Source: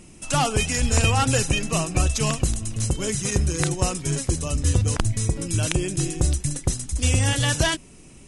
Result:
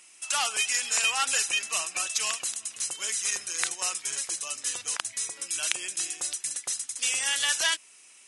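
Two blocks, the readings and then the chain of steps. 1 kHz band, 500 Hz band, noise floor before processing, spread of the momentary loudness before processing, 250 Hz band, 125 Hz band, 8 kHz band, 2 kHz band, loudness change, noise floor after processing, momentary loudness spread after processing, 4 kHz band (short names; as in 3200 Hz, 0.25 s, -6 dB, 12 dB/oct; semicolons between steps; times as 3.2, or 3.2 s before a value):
-7.5 dB, -17.0 dB, -46 dBFS, 6 LU, -29.5 dB, under -40 dB, 0.0 dB, -1.0 dB, -4.0 dB, -54 dBFS, 7 LU, 0.0 dB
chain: HPF 1400 Hz 12 dB/oct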